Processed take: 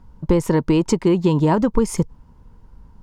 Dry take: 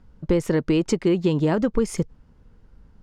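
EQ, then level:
low-shelf EQ 380 Hz +7 dB
parametric band 960 Hz +13.5 dB 0.4 octaves
high-shelf EQ 6,100 Hz +9.5 dB
−1.0 dB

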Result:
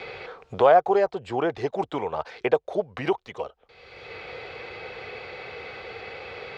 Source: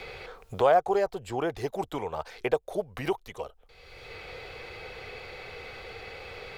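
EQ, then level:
high-pass filter 55 Hz
high-frequency loss of the air 140 metres
low-shelf EQ 88 Hz −12 dB
+5.5 dB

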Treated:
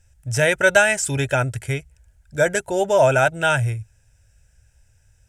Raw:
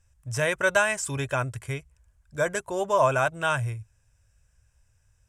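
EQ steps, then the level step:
Butterworth band-reject 1,100 Hz, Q 3
+7.5 dB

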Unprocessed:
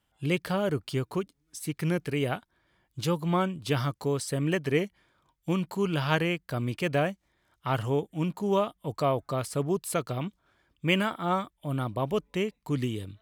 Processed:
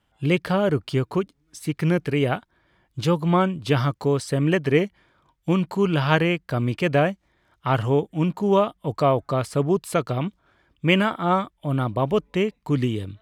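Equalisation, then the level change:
low-pass filter 3,500 Hz 6 dB per octave
+7.0 dB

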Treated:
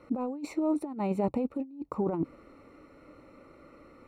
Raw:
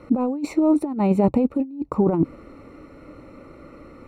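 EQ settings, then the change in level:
low-shelf EQ 300 Hz −6.5 dB
−7.5 dB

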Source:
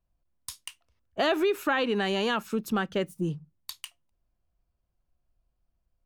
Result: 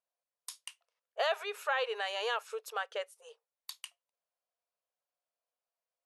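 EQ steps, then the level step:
linear-phase brick-wall band-pass 420–12,000 Hz
−5.0 dB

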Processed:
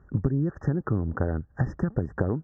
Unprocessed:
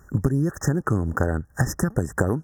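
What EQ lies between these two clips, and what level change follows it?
Chebyshev low-pass filter 3,200 Hz, order 2
high-frequency loss of the air 92 metres
tilt shelving filter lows +5.5 dB, about 1,300 Hz
−7.5 dB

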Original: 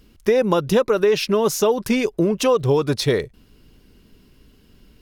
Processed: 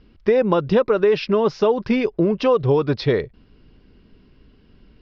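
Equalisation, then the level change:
elliptic low-pass filter 5,100 Hz, stop band 50 dB
high-shelf EQ 3,700 Hz −11.5 dB
+1.5 dB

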